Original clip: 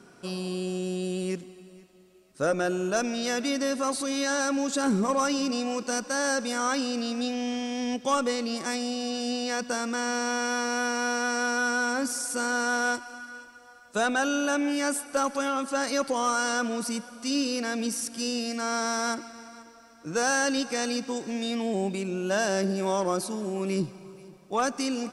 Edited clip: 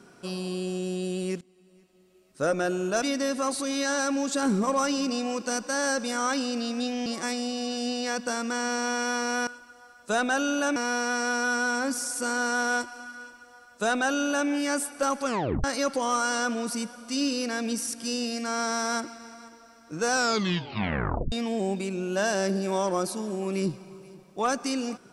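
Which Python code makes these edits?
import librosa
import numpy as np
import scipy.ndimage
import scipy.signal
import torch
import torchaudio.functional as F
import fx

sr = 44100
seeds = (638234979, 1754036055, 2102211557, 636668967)

y = fx.edit(x, sr, fx.fade_in_from(start_s=1.41, length_s=1.03, floor_db=-18.5),
    fx.cut(start_s=3.02, length_s=0.41),
    fx.cut(start_s=7.47, length_s=1.02),
    fx.duplicate(start_s=13.33, length_s=1.29, to_s=10.9),
    fx.tape_stop(start_s=15.4, length_s=0.38),
    fx.tape_stop(start_s=20.24, length_s=1.22), tone=tone)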